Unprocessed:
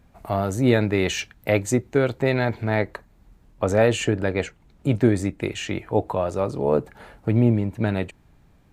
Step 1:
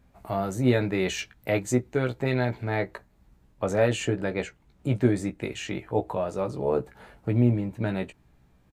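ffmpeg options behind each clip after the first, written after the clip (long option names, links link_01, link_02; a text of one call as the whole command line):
ffmpeg -i in.wav -filter_complex "[0:a]asplit=2[link_01][link_02];[link_02]adelay=16,volume=-6dB[link_03];[link_01][link_03]amix=inputs=2:normalize=0,volume=-5.5dB" out.wav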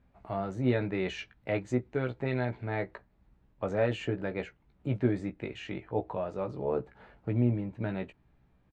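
ffmpeg -i in.wav -af "lowpass=3300,volume=-5.5dB" out.wav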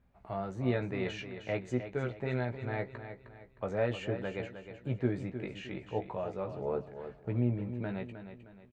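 ffmpeg -i in.wav -af "equalizer=frequency=290:width=6.9:gain=-5.5,aecho=1:1:310|620|930|1240:0.316|0.12|0.0457|0.0174,volume=-3dB" out.wav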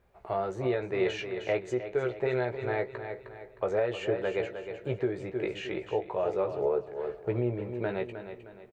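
ffmpeg -i in.wav -filter_complex "[0:a]lowshelf=frequency=310:width_type=q:width=3:gain=-6,asplit=2[link_01][link_02];[link_02]adelay=364,lowpass=frequency=2000:poles=1,volume=-23dB,asplit=2[link_03][link_04];[link_04]adelay=364,lowpass=frequency=2000:poles=1,volume=0.41,asplit=2[link_05][link_06];[link_06]adelay=364,lowpass=frequency=2000:poles=1,volume=0.41[link_07];[link_01][link_03][link_05][link_07]amix=inputs=4:normalize=0,alimiter=level_in=1dB:limit=-24dB:level=0:latency=1:release=344,volume=-1dB,volume=6.5dB" out.wav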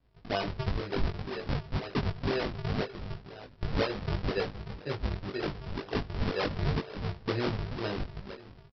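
ffmpeg -i in.wav -filter_complex "[0:a]aresample=11025,acrusher=samples=24:mix=1:aa=0.000001:lfo=1:lforange=38.4:lforate=2,aresample=44100,asplit=2[link_01][link_02];[link_02]adelay=20,volume=-3dB[link_03];[link_01][link_03]amix=inputs=2:normalize=0,volume=-2.5dB" out.wav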